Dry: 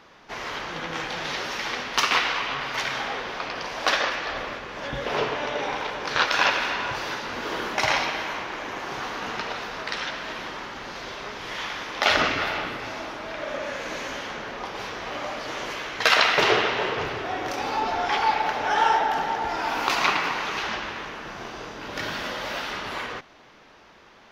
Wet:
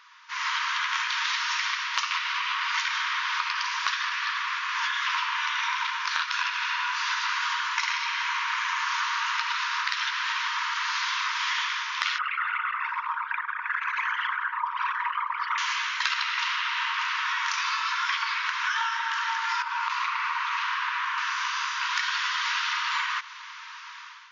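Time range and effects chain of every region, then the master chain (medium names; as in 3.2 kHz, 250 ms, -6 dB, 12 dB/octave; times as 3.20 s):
12.18–15.58 s: resonances exaggerated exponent 3 + delay 198 ms -20.5 dB
19.62–21.18 s: compression 4:1, threshold -31 dBFS + tilt EQ -4 dB/octave + doubling 43 ms -7.5 dB
whole clip: level rider gain up to 12.5 dB; FFT band-pass 910–7200 Hz; compression 12:1, threshold -24 dBFS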